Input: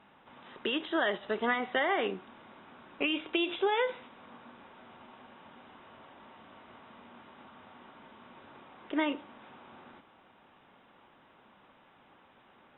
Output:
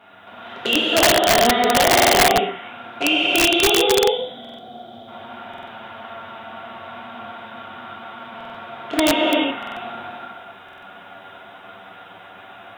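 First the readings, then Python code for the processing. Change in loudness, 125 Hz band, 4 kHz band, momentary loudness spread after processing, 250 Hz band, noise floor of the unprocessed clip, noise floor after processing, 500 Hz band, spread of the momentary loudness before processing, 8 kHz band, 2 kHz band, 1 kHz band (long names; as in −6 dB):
+15.0 dB, +21.0 dB, +20.0 dB, 22 LU, +13.0 dB, −62 dBFS, −43 dBFS, +15.0 dB, 8 LU, can't be measured, +14.0 dB, +16.5 dB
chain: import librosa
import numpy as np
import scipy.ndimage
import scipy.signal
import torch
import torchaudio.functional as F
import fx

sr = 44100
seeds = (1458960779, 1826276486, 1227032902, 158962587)

p1 = fx.high_shelf(x, sr, hz=2800.0, db=10.5)
p2 = p1 + fx.echo_stepped(p1, sr, ms=102, hz=870.0, octaves=0.7, feedback_pct=70, wet_db=-9.0, dry=0)
p3 = fx.dynamic_eq(p2, sr, hz=1600.0, q=3.6, threshold_db=-46.0, ratio=4.0, max_db=-4)
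p4 = fx.env_flanger(p3, sr, rest_ms=11.9, full_db=-26.0)
p5 = scipy.signal.sosfilt(scipy.signal.butter(2, 65.0, 'highpass', fs=sr, output='sos'), p4)
p6 = fx.small_body(p5, sr, hz=(700.0, 1400.0), ring_ms=55, db=15)
p7 = fx.spec_box(p6, sr, start_s=3.72, length_s=1.36, low_hz=810.0, high_hz=3000.0, gain_db=-17)
p8 = fx.rev_gated(p7, sr, seeds[0], gate_ms=430, shape='flat', drr_db=-6.5)
p9 = fx.rider(p8, sr, range_db=10, speed_s=0.5)
p10 = p8 + (p9 * 10.0 ** (3.0 / 20.0))
p11 = (np.mod(10.0 ** (7.5 / 20.0) * p10 + 1.0, 2.0) - 1.0) / 10.0 ** (7.5 / 20.0)
y = fx.buffer_glitch(p11, sr, at_s=(1.94, 4.4, 5.49, 8.36, 9.58, 10.64), block=2048, repeats=3)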